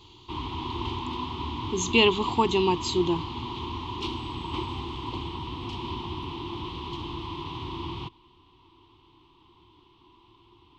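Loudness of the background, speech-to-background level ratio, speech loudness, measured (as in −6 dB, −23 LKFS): −34.5 LKFS, 10.0 dB, −24.5 LKFS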